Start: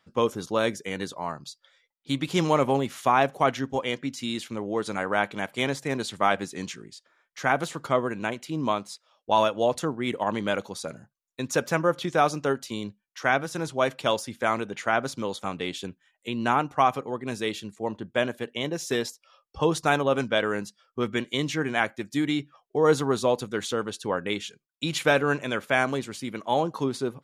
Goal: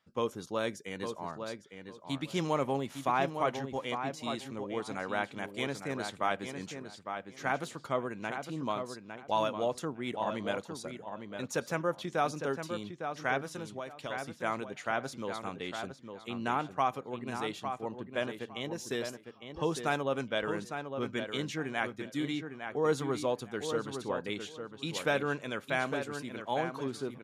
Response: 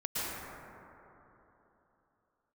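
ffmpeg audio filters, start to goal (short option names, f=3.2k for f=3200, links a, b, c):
-filter_complex "[0:a]asettb=1/sr,asplit=3[a][b][c];[a]atrim=end=13.474[d];[b]atrim=start=13.47:end=14.26,asetpts=PTS-STARTPTS,afade=t=in:d=0.004:c=qsin,afade=t=out:st=0.786:d=0.004:c=qsin,acompressor=threshold=-29dB:ratio=6[e];[c]atrim=start=14.256[f];[d][e]acrossfade=d=0.004:c1=hsin:c2=qsin[g];[g][f]acrossfade=d=0.004:c1=qsin:c2=hsin,asplit=2[h][i];[i]adelay=856,lowpass=f=3.1k:p=1,volume=-7dB,asplit=2[j][k];[k]adelay=856,lowpass=f=3.1k:p=1,volume=0.2,asplit=2[l][m];[m]adelay=856,lowpass=f=3.1k:p=1,volume=0.2[n];[h][j][l][n]amix=inputs=4:normalize=0,volume=-8.5dB"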